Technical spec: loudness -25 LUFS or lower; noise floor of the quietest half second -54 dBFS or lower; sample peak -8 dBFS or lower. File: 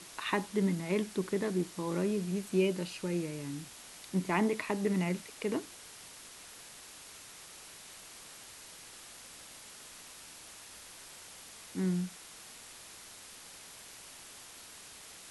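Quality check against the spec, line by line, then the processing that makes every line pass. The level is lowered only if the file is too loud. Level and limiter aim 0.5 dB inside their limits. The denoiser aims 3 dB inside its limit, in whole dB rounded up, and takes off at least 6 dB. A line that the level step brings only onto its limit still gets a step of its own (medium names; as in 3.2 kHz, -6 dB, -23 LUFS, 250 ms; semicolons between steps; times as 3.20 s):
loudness -34.0 LUFS: pass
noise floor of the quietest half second -51 dBFS: fail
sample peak -16.5 dBFS: pass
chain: noise reduction 6 dB, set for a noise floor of -51 dBFS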